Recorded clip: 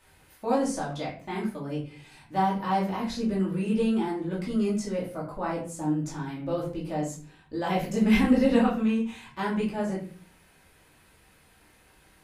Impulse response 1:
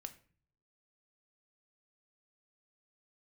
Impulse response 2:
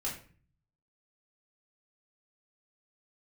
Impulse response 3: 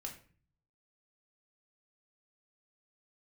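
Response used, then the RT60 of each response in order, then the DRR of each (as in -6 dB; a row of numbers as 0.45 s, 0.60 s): 2; 0.45 s, 0.45 s, 0.45 s; 8.0 dB, -6.0 dB, 0.5 dB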